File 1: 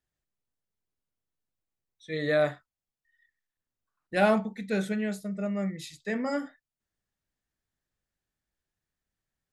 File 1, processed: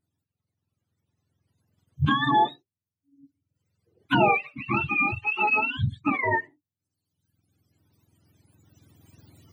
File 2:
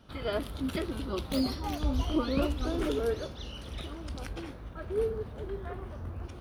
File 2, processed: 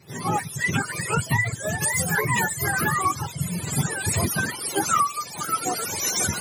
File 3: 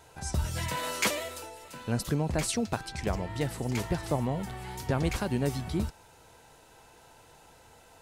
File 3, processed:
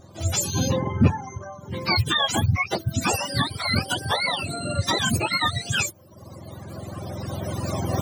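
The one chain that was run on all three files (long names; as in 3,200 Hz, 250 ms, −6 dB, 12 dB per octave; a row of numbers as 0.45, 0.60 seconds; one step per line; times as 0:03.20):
frequency axis turned over on the octave scale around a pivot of 720 Hz
camcorder AGC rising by 10 dB per second
reverb reduction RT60 1.2 s
loudness normalisation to −24 LKFS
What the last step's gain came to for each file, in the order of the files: +5.0, +7.0, +7.0 decibels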